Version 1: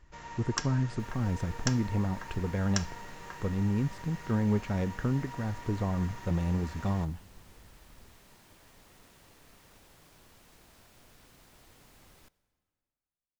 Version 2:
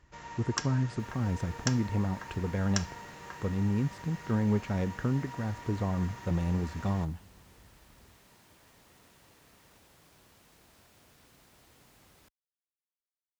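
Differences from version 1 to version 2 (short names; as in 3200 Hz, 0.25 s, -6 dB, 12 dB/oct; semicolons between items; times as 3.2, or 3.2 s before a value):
second sound: send off; master: add HPF 51 Hz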